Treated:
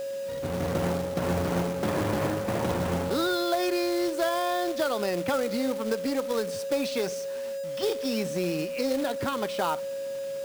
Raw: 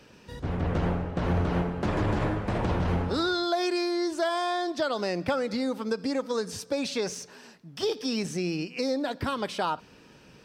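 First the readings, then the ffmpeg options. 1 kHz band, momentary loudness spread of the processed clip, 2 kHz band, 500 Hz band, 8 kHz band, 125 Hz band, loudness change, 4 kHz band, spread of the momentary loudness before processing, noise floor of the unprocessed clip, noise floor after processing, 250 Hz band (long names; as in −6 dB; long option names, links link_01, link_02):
0.0 dB, 6 LU, +0.5 dB, +3.0 dB, +2.5 dB, −3.5 dB, +0.5 dB, −0.5 dB, 5 LU, −54 dBFS, −33 dBFS, 0.0 dB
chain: -af "highpass=120,aeval=exprs='val(0)+0.0282*sin(2*PI*550*n/s)':channel_layout=same,equalizer=frequency=6200:width_type=o:width=1:gain=-4,acrusher=bits=3:mode=log:mix=0:aa=0.000001"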